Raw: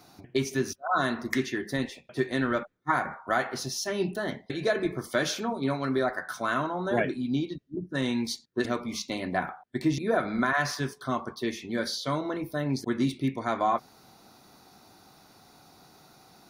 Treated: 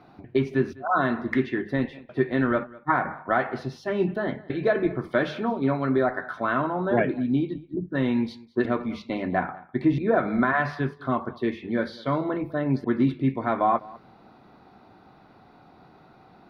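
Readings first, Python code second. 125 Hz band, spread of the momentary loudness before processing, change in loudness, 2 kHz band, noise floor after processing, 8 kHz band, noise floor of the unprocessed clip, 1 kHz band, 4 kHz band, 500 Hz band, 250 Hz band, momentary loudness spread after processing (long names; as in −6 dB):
+4.5 dB, 6 LU, +3.5 dB, +1.5 dB, −54 dBFS, below −20 dB, −57 dBFS, +3.5 dB, −8.0 dB, +4.5 dB, +5.0 dB, 7 LU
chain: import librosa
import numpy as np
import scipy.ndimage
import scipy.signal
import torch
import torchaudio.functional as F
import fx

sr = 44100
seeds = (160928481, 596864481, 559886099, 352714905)

p1 = fx.air_absorb(x, sr, metres=470.0)
p2 = fx.hum_notches(p1, sr, base_hz=50, count=3)
p3 = p2 + fx.echo_single(p2, sr, ms=202, db=-21.5, dry=0)
y = F.gain(torch.from_numpy(p3), 5.5).numpy()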